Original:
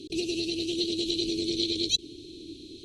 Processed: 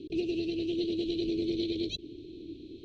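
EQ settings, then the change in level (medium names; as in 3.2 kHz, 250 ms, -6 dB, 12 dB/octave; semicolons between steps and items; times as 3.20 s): low-pass 2 kHz 12 dB/octave; 0.0 dB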